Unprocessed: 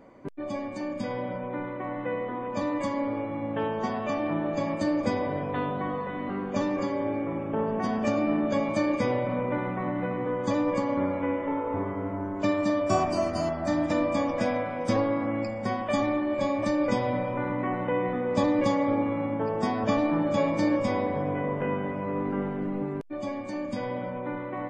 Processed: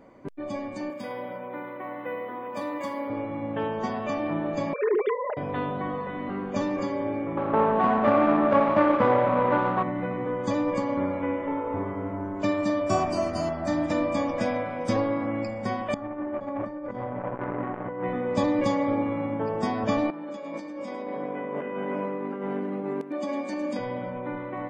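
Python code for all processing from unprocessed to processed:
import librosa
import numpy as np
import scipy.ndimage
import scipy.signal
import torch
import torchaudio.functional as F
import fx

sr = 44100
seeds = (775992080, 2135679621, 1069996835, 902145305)

y = fx.chain(x, sr, fx.highpass(hz=430.0, slope=6),
    fx.resample_linear(factor=3), at=(0.9, 3.1))
y = fx.chain(y, sr, fx.sine_speech(),
    fx.comb(ms=4.8, depth=0.78), at=(4.73, 5.37))
y = fx.chain(y, sr, fx.median_filter(points=25),
    fx.lowpass(hz=2500.0, slope=12),
    fx.peak_eq(hz=1200.0, db=15.0, octaves=2.1), at=(7.37, 9.83))
y = fx.chain(y, sr, fx.over_compress(threshold_db=-29.0, ratio=-0.5),
    fx.savgol(points=41),
    fx.transformer_sat(knee_hz=580.0), at=(15.94, 18.04))
y = fx.chain(y, sr, fx.highpass(hz=200.0, slope=24),
    fx.over_compress(threshold_db=-33.0, ratio=-1.0),
    fx.echo_single(ms=107, db=-10.5), at=(20.1, 23.79))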